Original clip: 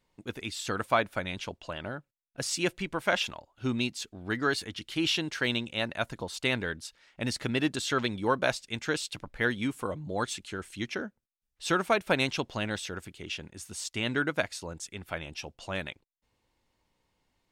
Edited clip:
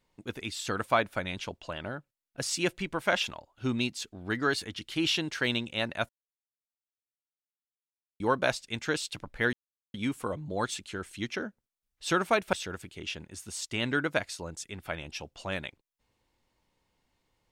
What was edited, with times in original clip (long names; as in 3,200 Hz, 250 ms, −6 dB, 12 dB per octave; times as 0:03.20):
0:06.09–0:08.20: silence
0:09.53: splice in silence 0.41 s
0:12.12–0:12.76: remove